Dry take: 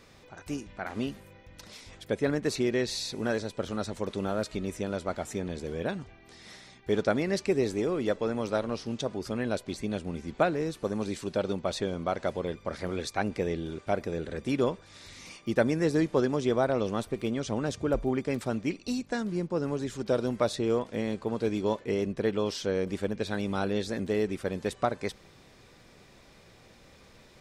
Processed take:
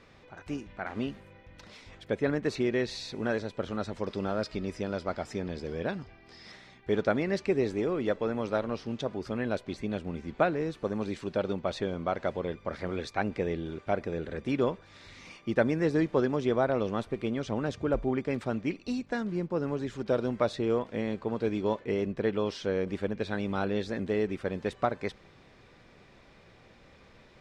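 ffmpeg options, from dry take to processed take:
ffmpeg -i in.wav -filter_complex "[0:a]asettb=1/sr,asplit=3[link_01][link_02][link_03];[link_01]atrim=end=3.984[link_04];[link_02]atrim=start=3.98:end=6.52,asetpts=PTS-STARTPTS,afade=type=in:duration=0.004:curve=qsin,afade=type=out:start_time=2.536:duration=0.004:curve=qsin,equalizer=frequency=5000:width=6.2:gain=14[link_05];[link_03]atrim=start=6.516[link_06];[link_04][link_05]acrossfade=duration=0.004:curve1=hsin:curve2=qsin[link_07];[link_07][link_06]acrossfade=duration=0.004:curve1=qsin:curve2=hsin,lowpass=2300,aemphasis=mode=production:type=75fm" out.wav

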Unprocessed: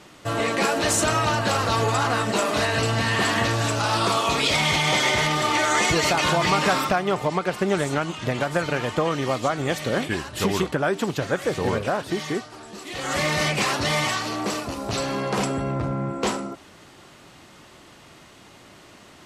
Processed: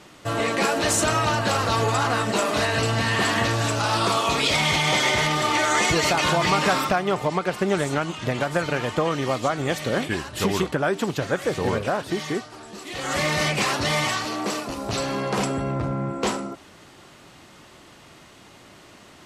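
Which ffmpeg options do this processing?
ffmpeg -i in.wav -filter_complex "[0:a]asettb=1/sr,asplit=3[link_01][link_02][link_03];[link_01]atrim=end=14.254[link_04];[link_02]atrim=start=14.25:end=14.7,asetpts=PTS-STARTPTS,afade=type=in:duration=0.004:curve=qsin,afade=type=out:start_time=0.446:duration=0.004:curve=qsin,highpass=150[link_05];[link_03]atrim=start=14.696[link_06];[link_04][link_05]acrossfade=duration=0.004:curve1=hsin:curve2=qsin[link_07];[link_07][link_06]acrossfade=duration=0.004:curve1=qsin:curve2=hsin" out.wav

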